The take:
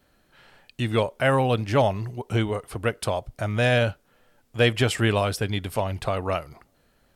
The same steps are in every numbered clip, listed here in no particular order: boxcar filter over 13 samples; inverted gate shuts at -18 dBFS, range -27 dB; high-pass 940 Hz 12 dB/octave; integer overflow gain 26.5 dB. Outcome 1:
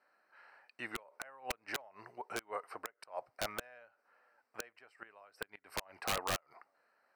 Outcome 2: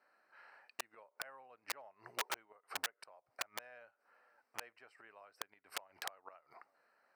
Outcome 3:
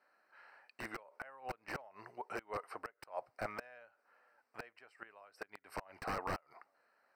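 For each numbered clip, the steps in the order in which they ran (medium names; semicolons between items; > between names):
high-pass > inverted gate > boxcar filter > integer overflow; inverted gate > boxcar filter > integer overflow > high-pass; high-pass > inverted gate > integer overflow > boxcar filter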